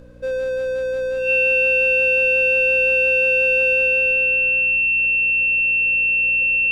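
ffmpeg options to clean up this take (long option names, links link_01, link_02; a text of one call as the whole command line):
ffmpeg -i in.wav -af "bandreject=frequency=60.6:width_type=h:width=4,bandreject=frequency=121.2:width_type=h:width=4,bandreject=frequency=181.8:width_type=h:width=4,bandreject=frequency=242.4:width_type=h:width=4,bandreject=frequency=303:width_type=h:width=4,bandreject=frequency=2700:width=30,agate=range=-21dB:threshold=-15dB" out.wav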